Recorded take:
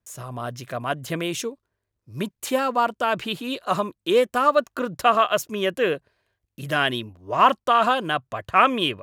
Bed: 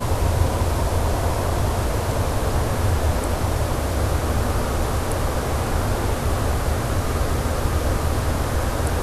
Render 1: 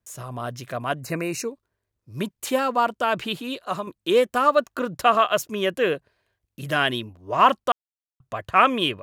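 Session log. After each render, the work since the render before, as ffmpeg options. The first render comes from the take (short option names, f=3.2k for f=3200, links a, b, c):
-filter_complex "[0:a]asettb=1/sr,asplit=3[a][b][c];[a]atrim=end=1.004[d];[b]atrim=start=1:end=1.48,asetpts=PTS-STARTPTS,afade=t=in:d=0.004:c=qsin,afade=t=out:st=0.476:d=0.004:c=qsin,asuperstop=centerf=3300:order=8:qfactor=2.9[e];[c]atrim=start=1.476[f];[d][e]acrossfade=d=0.004:c1=hsin:c2=qsin[g];[g][f]acrossfade=d=0.004:c1=qsin:c2=hsin,asplit=4[h][i][j][k];[h]atrim=end=3.87,asetpts=PTS-STARTPTS,afade=t=out:st=3.32:d=0.55:silence=0.421697[l];[i]atrim=start=3.87:end=7.72,asetpts=PTS-STARTPTS,afade=t=in:d=0.004:c=hsin:silence=0.421697,afade=t=out:st=3.846:d=0.004:c=hsin[m];[j]atrim=start=7.72:end=8.2,asetpts=PTS-STARTPTS,volume=0[n];[k]atrim=start=8.2,asetpts=PTS-STARTPTS,afade=t=in:d=0.004:c=hsin[o];[l][m][n][o]concat=n=4:v=0:a=1"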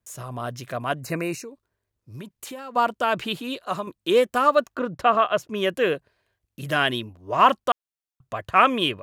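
-filter_complex "[0:a]asettb=1/sr,asplit=3[a][b][c];[a]atrim=end=1.344[d];[b]atrim=start=1.34:end=2.76,asetpts=PTS-STARTPTS,afade=t=in:d=0.004:c=qsin,afade=t=out:st=1.416:d=0.004:c=qsin,acompressor=threshold=-34dB:ratio=6:attack=3.2:release=140:knee=1:detection=peak[e];[c]atrim=start=2.756[f];[d][e]acrossfade=d=0.004:c1=hsin:c2=qsin[g];[g][f]acrossfade=d=0.004:c1=qsin:c2=hsin,asettb=1/sr,asplit=3[h][i][j];[h]atrim=end=4.754[k];[i]atrim=start=4.75:end=5.55,asetpts=PTS-STARTPTS,afade=t=in:d=0.004:c=qsin,afade=t=out:st=0.796:d=0.004:c=qsin,aemphasis=mode=reproduction:type=75kf[l];[j]atrim=start=5.546[m];[k][l]acrossfade=d=0.004:c1=hsin:c2=qsin[n];[n][m]acrossfade=d=0.004:c1=qsin:c2=hsin"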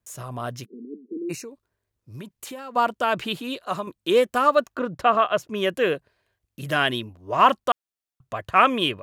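-filter_complex "[0:a]asplit=3[a][b][c];[a]afade=t=out:st=0.64:d=0.02[d];[b]asuperpass=centerf=300:order=20:qfactor=1.2,afade=t=in:st=0.64:d=0.02,afade=t=out:st=1.29:d=0.02[e];[c]afade=t=in:st=1.29:d=0.02[f];[d][e][f]amix=inputs=3:normalize=0"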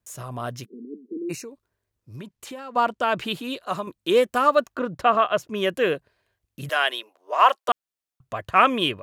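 -filter_complex "[0:a]asettb=1/sr,asplit=3[a][b][c];[a]atrim=end=2.164[d];[b]atrim=start=2.16:end=3.2,asetpts=PTS-STARTPTS,afade=t=in:d=0.004:c=qsin,afade=t=out:st=1.036:d=0.004:c=qsin,highshelf=f=11k:g=-11.5[e];[c]atrim=start=3.196[f];[d][e]acrossfade=d=0.004:c1=hsin:c2=qsin[g];[g][f]acrossfade=d=0.004:c1=qsin:c2=hsin,asettb=1/sr,asplit=3[h][i][j];[h]atrim=end=6.694[k];[i]atrim=start=6.69:end=7.69,asetpts=PTS-STARTPTS,afade=t=in:d=0.004:c=qsin,afade=t=out:st=0.996:d=0.004:c=qsin,highpass=f=490:w=0.5412,highpass=f=490:w=1.3066[l];[j]atrim=start=7.686[m];[k][l]acrossfade=d=0.004:c1=hsin:c2=qsin[n];[n][m]acrossfade=d=0.004:c1=qsin:c2=hsin"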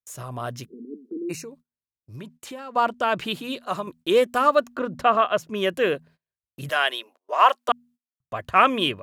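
-af "bandreject=f=80.4:t=h:w=4,bandreject=f=160.8:t=h:w=4,bandreject=f=241.2:t=h:w=4,agate=range=-25dB:threshold=-49dB:ratio=16:detection=peak"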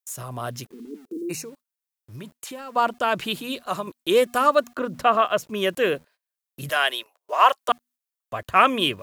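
-filter_complex "[0:a]acrossover=split=510|2700[a][b][c];[a]aeval=exprs='val(0)*gte(abs(val(0)),0.00251)':c=same[d];[d][b][c]amix=inputs=3:normalize=0,crystalizer=i=1:c=0"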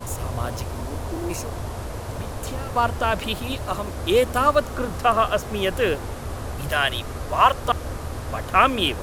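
-filter_complex "[1:a]volume=-9.5dB[a];[0:a][a]amix=inputs=2:normalize=0"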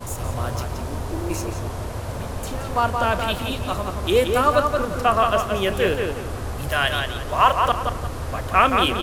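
-filter_complex "[0:a]asplit=2[a][b];[b]adelay=31,volume=-14dB[c];[a][c]amix=inputs=2:normalize=0,asplit=2[d][e];[e]adelay=174,lowpass=f=4.2k:p=1,volume=-4.5dB,asplit=2[f][g];[g]adelay=174,lowpass=f=4.2k:p=1,volume=0.33,asplit=2[h][i];[i]adelay=174,lowpass=f=4.2k:p=1,volume=0.33,asplit=2[j][k];[k]adelay=174,lowpass=f=4.2k:p=1,volume=0.33[l];[d][f][h][j][l]amix=inputs=5:normalize=0"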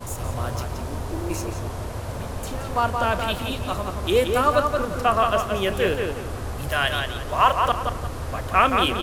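-af "volume=-1.5dB"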